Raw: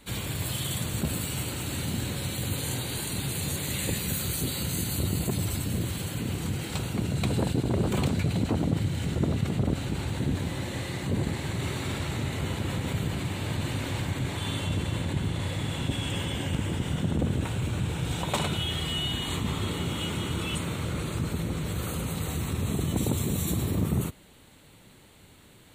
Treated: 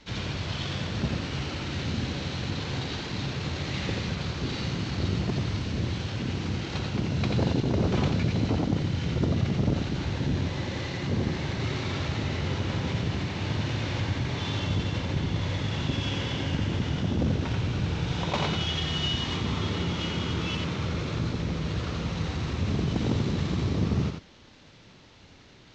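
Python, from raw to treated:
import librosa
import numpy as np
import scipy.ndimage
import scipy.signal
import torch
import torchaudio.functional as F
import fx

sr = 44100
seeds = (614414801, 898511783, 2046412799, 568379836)

y = fx.cvsd(x, sr, bps=32000)
y = y + 10.0 ** (-4.5 / 20.0) * np.pad(y, (int(87 * sr / 1000.0), 0))[:len(y)]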